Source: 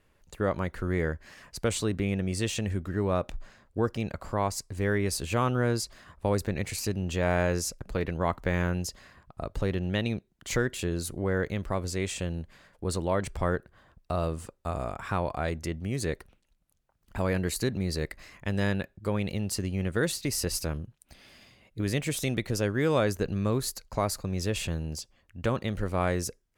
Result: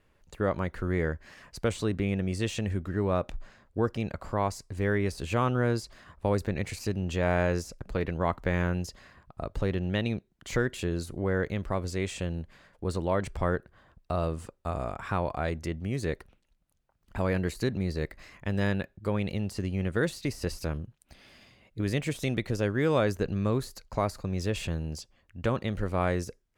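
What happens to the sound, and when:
17.84–18.61 s: de-esser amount 100%
whole clip: de-esser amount 70%; treble shelf 6.3 kHz -6.5 dB

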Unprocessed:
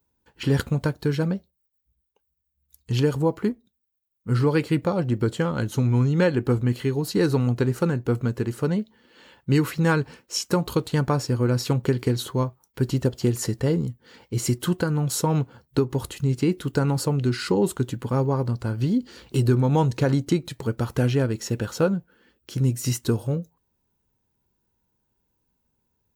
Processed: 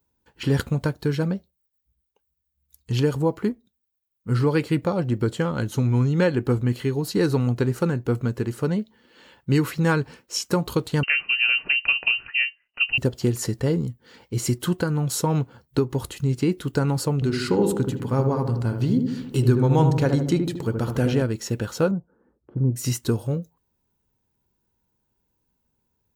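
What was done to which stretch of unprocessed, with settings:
11.03–12.98 s: frequency inversion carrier 2.9 kHz
17.14–21.22 s: filtered feedback delay 76 ms, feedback 63%, low-pass 930 Hz, level -4 dB
21.91–22.76 s: low-pass 1.1 kHz 24 dB/octave

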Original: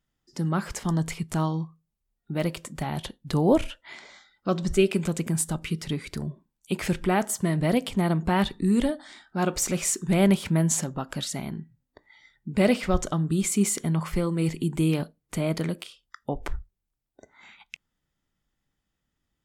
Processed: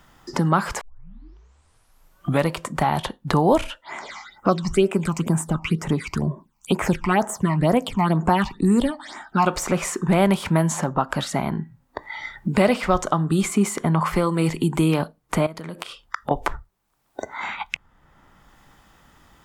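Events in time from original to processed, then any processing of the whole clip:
0.81 s: tape start 1.72 s
3.84–9.46 s: phase shifter stages 8, 2.1 Hz, lowest notch 460–4500 Hz
15.46–16.31 s: compression, threshold -40 dBFS
whole clip: peaking EQ 1 kHz +11.5 dB 1.5 oct; three bands compressed up and down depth 70%; trim +2.5 dB

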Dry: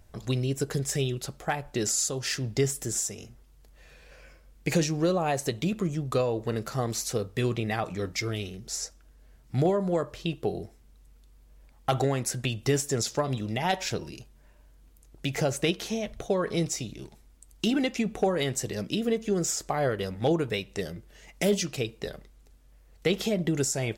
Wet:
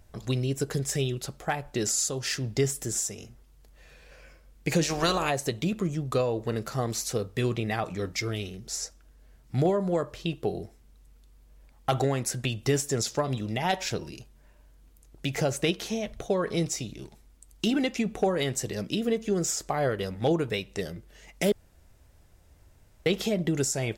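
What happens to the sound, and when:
4.83–5.29 s: spectral peaks clipped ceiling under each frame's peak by 21 dB
21.52–23.06 s: room tone

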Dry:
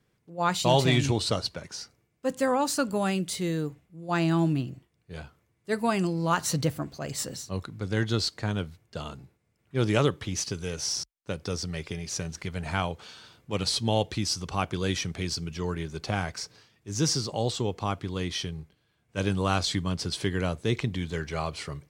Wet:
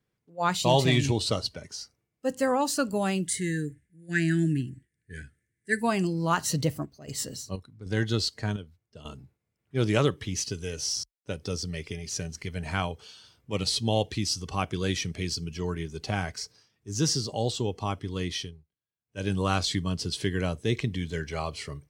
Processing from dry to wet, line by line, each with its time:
3.27–5.82 s: FFT filter 280 Hz 0 dB, 420 Hz -3 dB, 1.1 kHz -27 dB, 1.7 kHz +12 dB, 2.6 kHz -3 dB, 4.8 kHz -4 dB, 9 kHz +9 dB, 13 kHz -6 dB
6.78–9.15 s: square tremolo 1.7 Hz -> 0.62 Hz, depth 65%, duty 65%
18.34–19.34 s: dip -19 dB, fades 0.30 s
whole clip: spectral noise reduction 9 dB

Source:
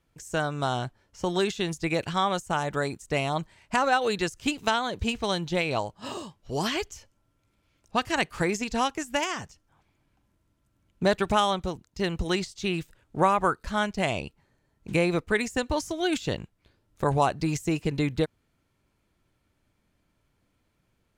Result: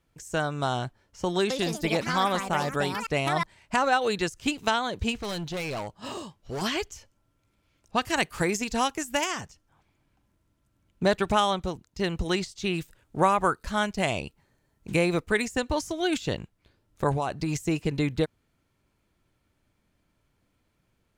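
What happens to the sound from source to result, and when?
1.38–3.96 s: ever faster or slower copies 120 ms, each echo +5 st, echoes 2, each echo -6 dB
5.22–6.62 s: overload inside the chain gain 29.5 dB
8.03–9.41 s: treble shelf 9.2 kHz +10.5 dB
12.75–15.45 s: treble shelf 7.2 kHz +6 dB
17.11–17.61 s: compression, threshold -23 dBFS

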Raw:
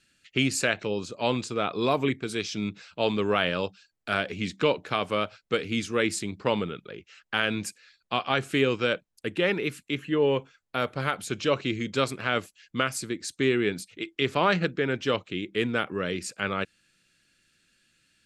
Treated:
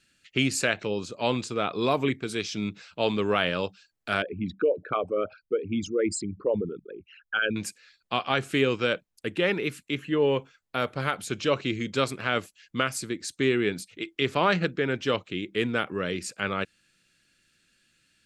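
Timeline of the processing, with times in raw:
4.22–7.56 s: resonances exaggerated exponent 3

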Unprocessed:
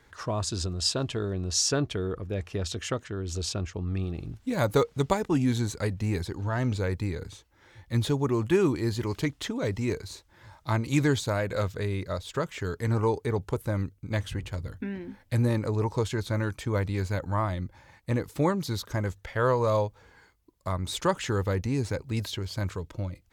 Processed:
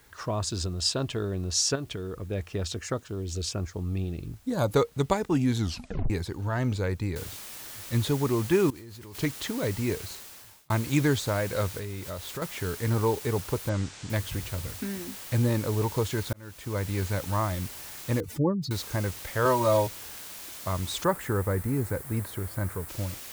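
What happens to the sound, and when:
1.75–2.19 s: compression, threshold -30 dBFS
2.74–4.72 s: LFO notch saw down 1.3 Hz 720–4200 Hz
5.58 s: tape stop 0.52 s
7.16 s: noise floor step -62 dB -42 dB
8.70–9.15 s: level held to a coarse grid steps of 22 dB
10.04–10.70 s: fade out
11.78–12.42 s: compression 3:1, threshold -33 dBFS
13.69–14.10 s: steep low-pass 8.2 kHz 48 dB/octave
16.33–16.97 s: fade in
18.20–18.71 s: spectral contrast enhancement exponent 2.3
19.45–19.87 s: comb 3.2 ms, depth 92%
21.04–22.89 s: high-order bell 4.1 kHz -13 dB

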